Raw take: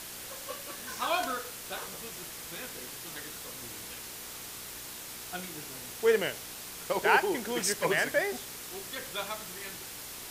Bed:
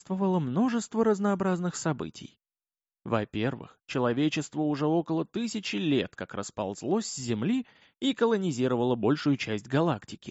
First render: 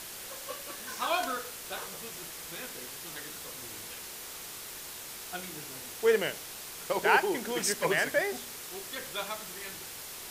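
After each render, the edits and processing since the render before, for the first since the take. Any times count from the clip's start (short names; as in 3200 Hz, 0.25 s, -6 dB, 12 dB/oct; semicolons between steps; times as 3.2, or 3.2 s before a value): de-hum 60 Hz, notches 5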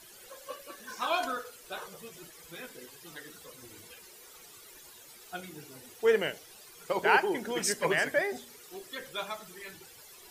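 denoiser 14 dB, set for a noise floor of -43 dBFS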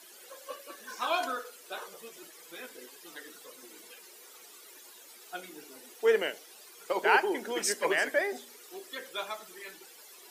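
HPF 250 Hz 24 dB/oct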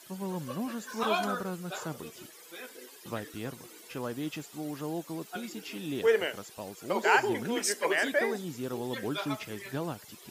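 add bed -9.5 dB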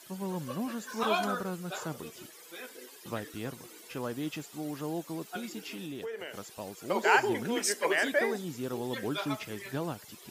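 5.66–6.35 compressor, threshold -36 dBFS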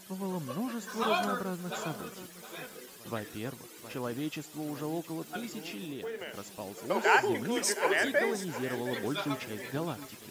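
pre-echo 0.125 s -21 dB; lo-fi delay 0.714 s, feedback 35%, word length 8-bit, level -12.5 dB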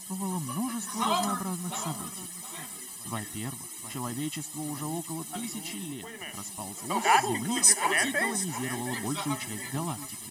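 bell 9200 Hz +14.5 dB 0.72 oct; comb 1 ms, depth 93%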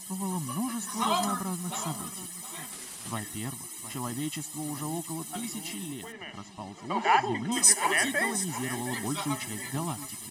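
2.72–3.14 CVSD 64 kbps; 6.12–7.52 air absorption 160 m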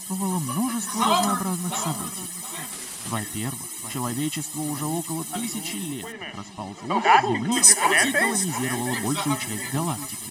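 gain +6.5 dB; limiter -1 dBFS, peak gain reduction 1 dB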